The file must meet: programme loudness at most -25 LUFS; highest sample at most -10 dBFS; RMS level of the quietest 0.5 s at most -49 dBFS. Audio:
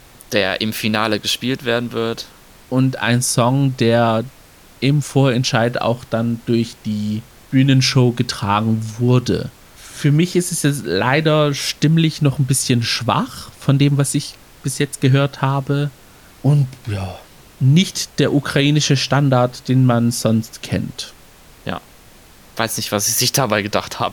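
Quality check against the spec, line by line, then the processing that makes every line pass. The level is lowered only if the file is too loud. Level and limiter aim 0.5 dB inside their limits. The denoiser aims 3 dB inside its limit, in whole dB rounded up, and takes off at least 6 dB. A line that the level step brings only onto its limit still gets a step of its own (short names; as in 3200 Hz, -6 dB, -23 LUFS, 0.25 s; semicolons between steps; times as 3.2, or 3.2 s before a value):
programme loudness -17.5 LUFS: fail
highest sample -3.0 dBFS: fail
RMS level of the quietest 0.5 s -45 dBFS: fail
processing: gain -8 dB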